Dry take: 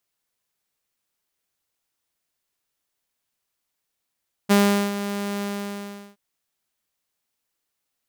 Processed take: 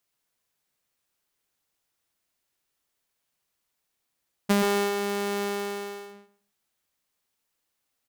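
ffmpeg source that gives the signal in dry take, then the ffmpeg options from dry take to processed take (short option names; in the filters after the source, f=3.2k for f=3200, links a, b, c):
-f lavfi -i "aevalsrc='0.299*(2*mod(202*t,1)-1)':d=1.671:s=44100,afade=t=in:d=0.023,afade=t=out:st=0.023:d=0.4:silence=0.237,afade=t=out:st=0.94:d=0.731"
-filter_complex "[0:a]acompressor=threshold=-20dB:ratio=6,asplit=2[a][b];[b]adelay=126,lowpass=f=2.9k:p=1,volume=-4dB,asplit=2[c][d];[d]adelay=126,lowpass=f=2.9k:p=1,volume=0.17,asplit=2[e][f];[f]adelay=126,lowpass=f=2.9k:p=1,volume=0.17[g];[a][c][e][g]amix=inputs=4:normalize=0"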